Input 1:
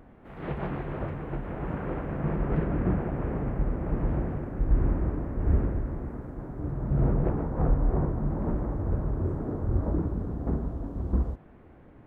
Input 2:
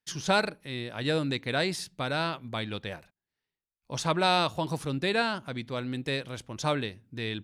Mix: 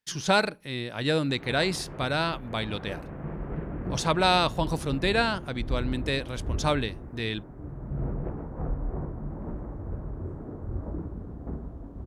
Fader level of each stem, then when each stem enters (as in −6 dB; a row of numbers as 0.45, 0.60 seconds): −7.0, +2.5 decibels; 1.00, 0.00 seconds